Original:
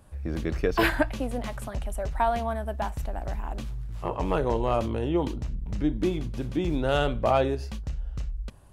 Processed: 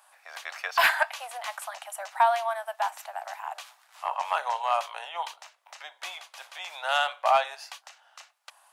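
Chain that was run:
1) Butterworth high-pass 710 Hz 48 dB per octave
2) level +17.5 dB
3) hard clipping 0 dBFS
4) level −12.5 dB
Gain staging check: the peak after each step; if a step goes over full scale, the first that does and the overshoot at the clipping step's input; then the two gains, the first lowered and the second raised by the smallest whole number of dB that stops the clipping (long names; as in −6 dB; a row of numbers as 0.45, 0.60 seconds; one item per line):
−13.5, +4.0, 0.0, −12.5 dBFS
step 2, 4.0 dB
step 2 +13.5 dB, step 4 −8.5 dB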